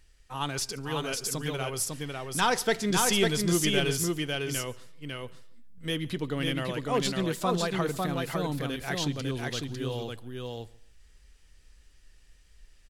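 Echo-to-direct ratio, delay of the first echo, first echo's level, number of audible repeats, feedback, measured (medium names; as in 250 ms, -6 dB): -3.0 dB, 143 ms, -24.0 dB, 4, no regular repeats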